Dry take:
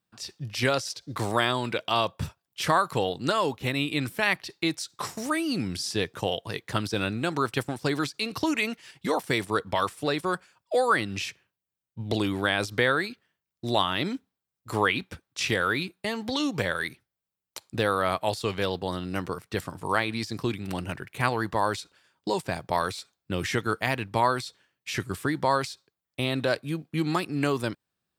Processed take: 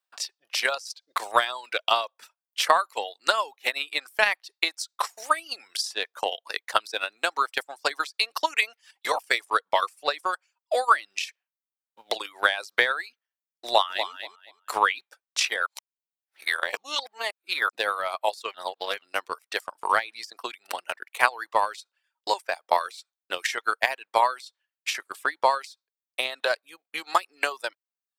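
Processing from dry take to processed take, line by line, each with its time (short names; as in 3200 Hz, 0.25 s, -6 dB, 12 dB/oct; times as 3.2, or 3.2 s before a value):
13.65–14.11 echo throw 0.24 s, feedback 25%, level -6 dB
15.66–17.69 reverse
18.54–19.02 reverse
whole clip: HPF 600 Hz 24 dB/oct; reverb removal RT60 0.52 s; transient shaper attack +11 dB, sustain -5 dB; gain -2 dB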